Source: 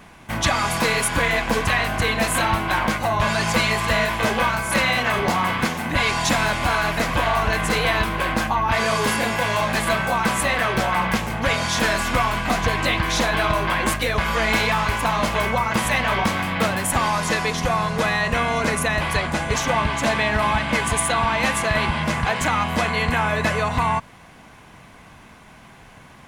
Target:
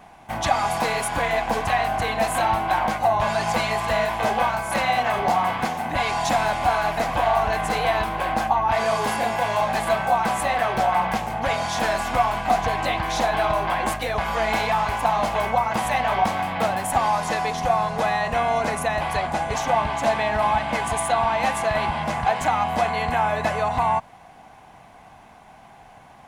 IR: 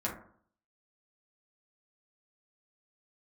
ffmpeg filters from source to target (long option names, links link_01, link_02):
-af "equalizer=frequency=760:width_type=o:width=0.55:gain=14.5,volume=-6.5dB"